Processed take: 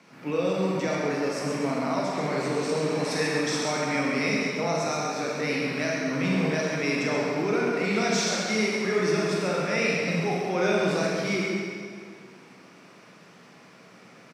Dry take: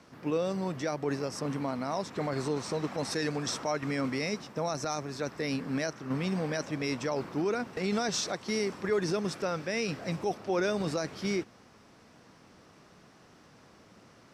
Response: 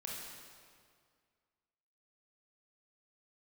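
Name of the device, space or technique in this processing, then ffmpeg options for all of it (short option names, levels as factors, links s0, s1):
PA in a hall: -filter_complex "[0:a]highpass=f=140:w=0.5412,highpass=f=140:w=1.3066,equalizer=f=2300:t=o:w=0.46:g=7.5,aecho=1:1:133:0.473[s0];[1:a]atrim=start_sample=2205[s1];[s0][s1]afir=irnorm=-1:irlink=0,volume=1.88"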